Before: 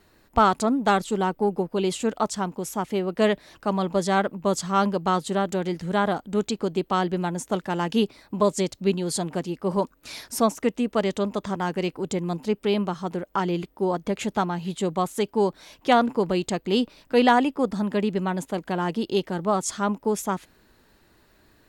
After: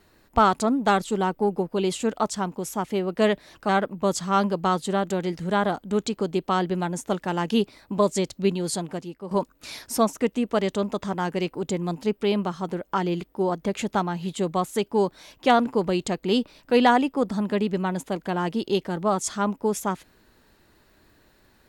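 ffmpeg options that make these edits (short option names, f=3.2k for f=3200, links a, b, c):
-filter_complex "[0:a]asplit=3[a][b][c];[a]atrim=end=3.692[d];[b]atrim=start=4.108:end=9.73,asetpts=PTS-STARTPTS,afade=t=out:st=4.952:d=0.67:silence=0.237137[e];[c]atrim=start=9.73,asetpts=PTS-STARTPTS,afade=t=in:d=0.004:c=hsin:silence=0.237137[f];[e][f]concat=n=2:v=0:a=1[g];[d][g]acrossfade=d=0.004:c1=hsin:c2=hsin"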